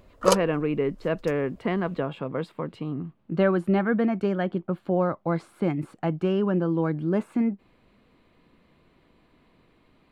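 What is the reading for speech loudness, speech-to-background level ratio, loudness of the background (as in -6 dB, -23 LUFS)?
-26.5 LUFS, -0.5 dB, -26.0 LUFS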